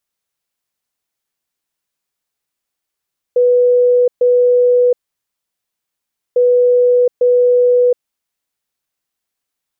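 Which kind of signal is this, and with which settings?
beep pattern sine 492 Hz, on 0.72 s, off 0.13 s, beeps 2, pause 1.43 s, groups 2, -7.5 dBFS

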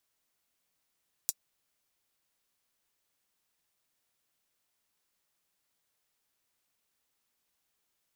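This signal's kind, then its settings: closed hi-hat, high-pass 6000 Hz, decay 0.05 s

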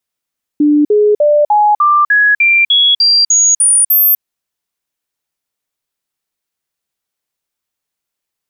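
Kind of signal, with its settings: stepped sine 296 Hz up, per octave 2, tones 12, 0.25 s, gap 0.05 s -6 dBFS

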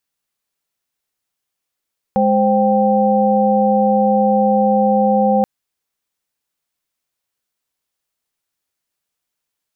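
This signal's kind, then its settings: chord G#3/C5/G5 sine, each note -15.5 dBFS 3.28 s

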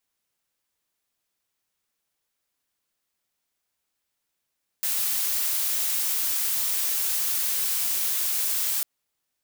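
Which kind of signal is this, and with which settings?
noise blue, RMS -25.5 dBFS 4.00 s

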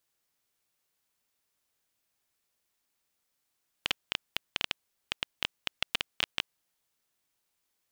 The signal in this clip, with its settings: random clicks 8.1/s -9.5 dBFS 3.10 s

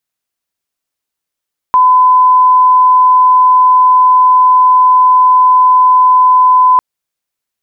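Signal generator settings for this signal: tone sine 1010 Hz -3.5 dBFS 5.05 s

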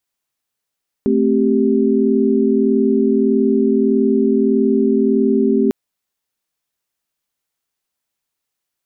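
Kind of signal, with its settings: chord A3/C4/G4 sine, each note -16 dBFS 4.65 s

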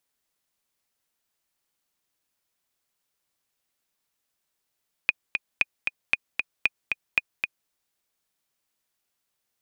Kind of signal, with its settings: metronome 230 bpm, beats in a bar 2, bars 5, 2470 Hz, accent 5 dB -6.5 dBFS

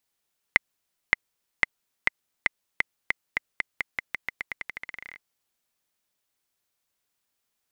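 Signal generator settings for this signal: bouncing ball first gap 0.57 s, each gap 0.88, 2060 Hz, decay 16 ms -1.5 dBFS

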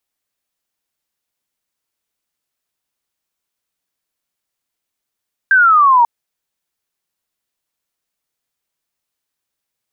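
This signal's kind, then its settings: laser zap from 1600 Hz, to 920 Hz, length 0.54 s sine, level -6.5 dB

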